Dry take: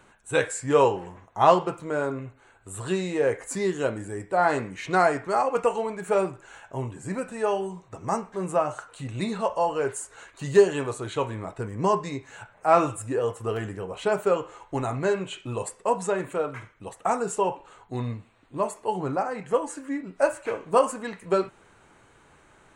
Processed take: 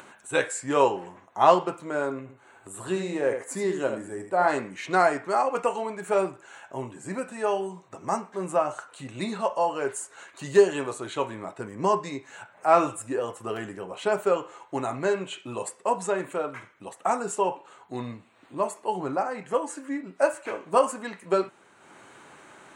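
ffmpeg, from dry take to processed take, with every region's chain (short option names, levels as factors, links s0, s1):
-filter_complex "[0:a]asettb=1/sr,asplit=3[s0][s1][s2];[s0]atrim=end=2.214[s3];[s1]atrim=start=2.21:end=4.48,asetpts=PTS-STARTPTS,afade=t=in:d=0.004:c=qsin,afade=t=out:st=2.266:d=0.004:c=qsin,equalizer=f=4100:w=0.44:g=-4,aecho=1:1:78:0.398,atrim=end_sample=100107[s4];[s2]atrim=start=4.476[s5];[s3][s4]acrossfade=d=0.004:c1=hsin:c2=qsin[s6];[s6][s5]acrossfade=d=0.004:c1=qsin:c2=hsin,highpass=200,bandreject=f=460:w=12,acompressor=mode=upward:threshold=0.00891:ratio=2.5"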